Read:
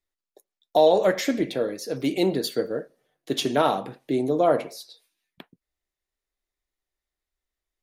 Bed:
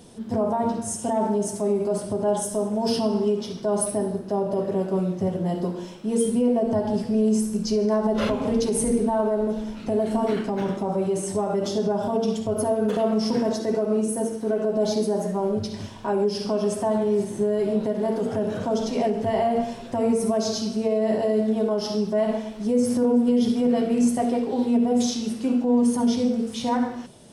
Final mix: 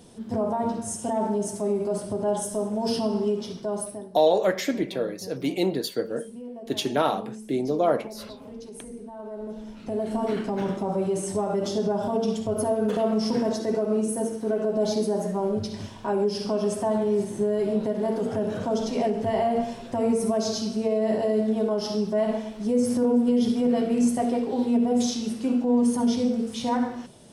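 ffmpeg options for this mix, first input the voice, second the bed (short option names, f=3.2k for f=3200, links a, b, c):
-filter_complex "[0:a]adelay=3400,volume=-2dB[a];[1:a]volume=14dB,afade=t=out:st=3.5:d=0.6:silence=0.16788,afade=t=in:st=9.16:d=1.38:silence=0.149624[b];[a][b]amix=inputs=2:normalize=0"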